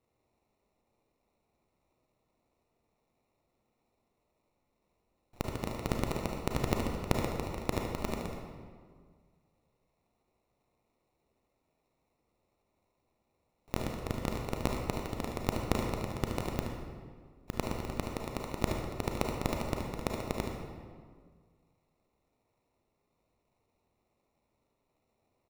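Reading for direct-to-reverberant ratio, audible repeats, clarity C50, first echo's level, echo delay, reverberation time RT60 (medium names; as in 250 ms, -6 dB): 0.0 dB, 1, 1.0 dB, -8.0 dB, 74 ms, 1.8 s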